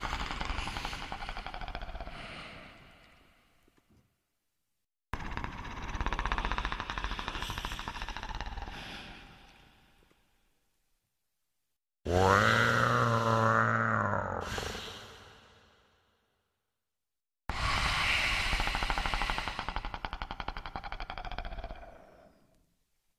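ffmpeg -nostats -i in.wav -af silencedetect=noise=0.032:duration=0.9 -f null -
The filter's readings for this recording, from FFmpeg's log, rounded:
silence_start: 2.07
silence_end: 5.14 | silence_duration: 3.06
silence_start: 8.68
silence_end: 12.07 | silence_duration: 3.39
silence_start: 14.76
silence_end: 17.50 | silence_duration: 2.74
silence_start: 21.71
silence_end: 23.18 | silence_duration: 1.47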